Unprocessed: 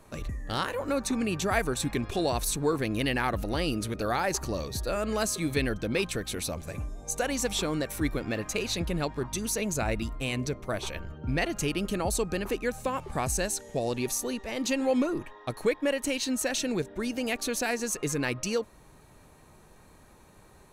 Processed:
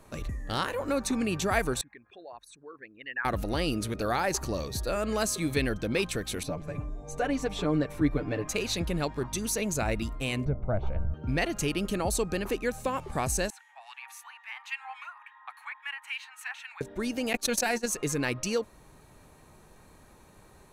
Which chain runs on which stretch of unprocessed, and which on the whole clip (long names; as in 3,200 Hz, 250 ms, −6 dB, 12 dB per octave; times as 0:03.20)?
0:01.81–0:03.25: spectral envelope exaggerated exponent 2 + resonant band-pass 1,700 Hz, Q 3
0:06.43–0:08.48: low-pass filter 1,300 Hz 6 dB per octave + comb filter 6.8 ms, depth 76%
0:10.45–0:11.14: low-pass filter 1,000 Hz + low-shelf EQ 140 Hz +9.5 dB + comb filter 1.4 ms, depth 46%
0:13.50–0:16.81: Butterworth high-pass 820 Hz 72 dB per octave + high shelf with overshoot 3,500 Hz −14 dB, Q 1.5 + two-band tremolo in antiphase 3.6 Hz, crossover 1,600 Hz
0:17.33–0:17.86: noise gate −30 dBFS, range −54 dB + comb filter 5.6 ms, depth 39% + envelope flattener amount 100%
whole clip: no processing